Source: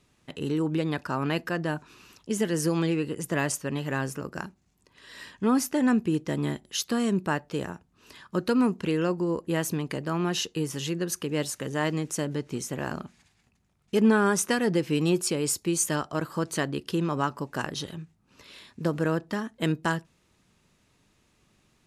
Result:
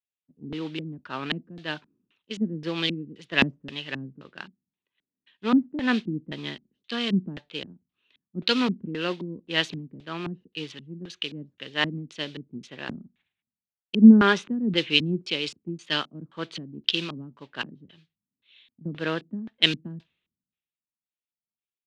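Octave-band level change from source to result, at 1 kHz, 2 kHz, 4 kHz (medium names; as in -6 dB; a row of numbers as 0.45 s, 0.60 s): -2.5 dB, +3.0 dB, +9.0 dB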